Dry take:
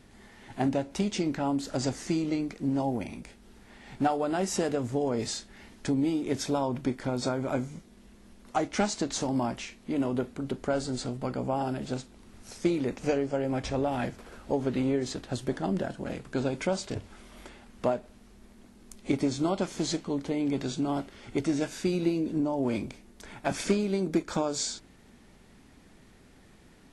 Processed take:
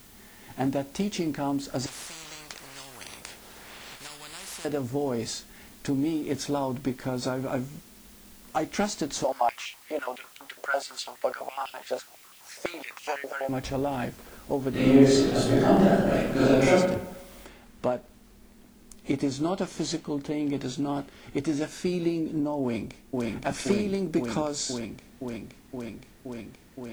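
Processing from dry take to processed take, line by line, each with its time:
1.86–4.65 spectral compressor 10:1
9.24–13.49 stepped high-pass 12 Hz 570–2900 Hz
14.7–16.7 reverb throw, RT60 0.94 s, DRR -11 dB
17.46 noise floor step -54 dB -66 dB
22.61–23.29 echo throw 0.52 s, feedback 85%, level -0.5 dB

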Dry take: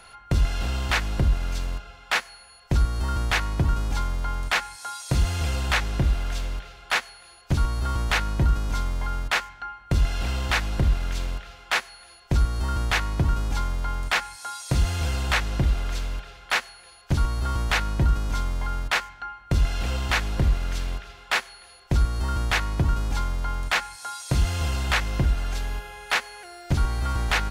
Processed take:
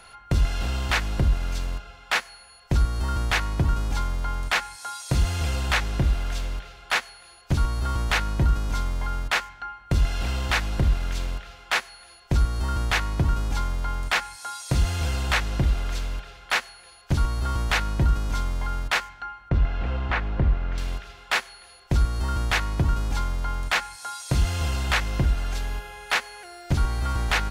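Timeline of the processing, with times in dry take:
19.49–20.78 LPF 2000 Hz

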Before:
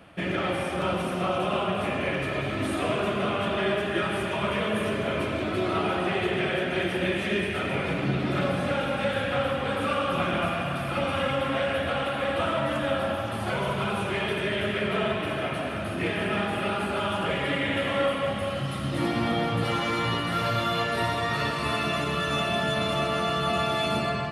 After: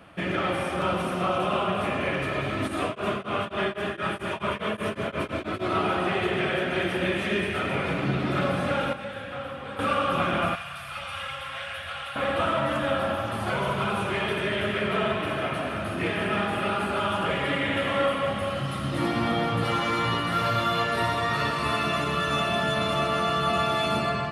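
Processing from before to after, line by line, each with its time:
2.67–5.69 beating tremolo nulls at 3.2 Hz -> 7 Hz
8.93–9.79 gain -9.5 dB
10.55–12.16 passive tone stack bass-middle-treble 10-0-10
whole clip: bell 1200 Hz +3.5 dB 0.77 oct

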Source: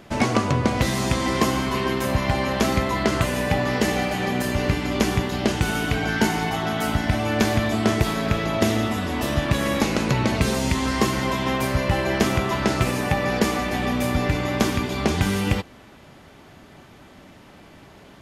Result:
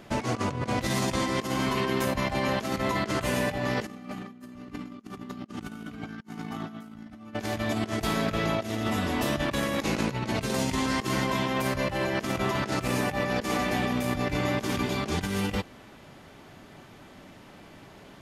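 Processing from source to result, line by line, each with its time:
3.85–7.34 small resonant body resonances 230/1200 Hz, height 16 dB
whole clip: bell 66 Hz -13 dB 0.26 oct; negative-ratio compressor -24 dBFS, ratio -0.5; gain -6 dB

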